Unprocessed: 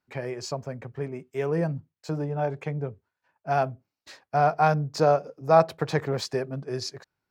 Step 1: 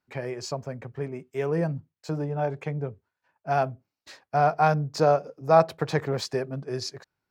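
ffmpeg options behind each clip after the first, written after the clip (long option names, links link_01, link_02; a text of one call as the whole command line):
ffmpeg -i in.wav -af anull out.wav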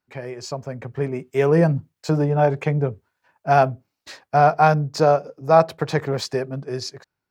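ffmpeg -i in.wav -af "dynaudnorm=framelen=350:gausssize=5:maxgain=10dB" out.wav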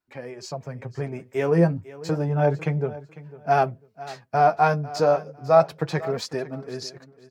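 ffmpeg -i in.wav -af "flanger=delay=2.8:depth=8.9:regen=35:speed=0.31:shape=triangular,aecho=1:1:499|998:0.133|0.0307" out.wav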